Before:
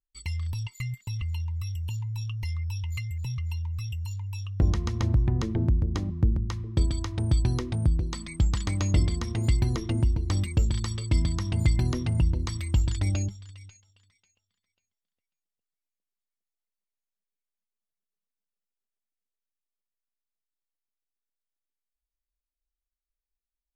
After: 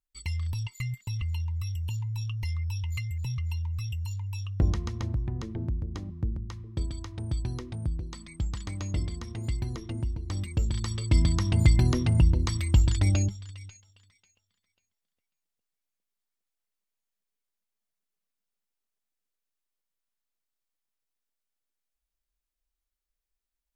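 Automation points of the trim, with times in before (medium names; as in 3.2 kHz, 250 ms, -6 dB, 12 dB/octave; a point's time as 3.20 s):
4.51 s 0 dB
5.18 s -7.5 dB
10.21 s -7.5 dB
11.28 s +3 dB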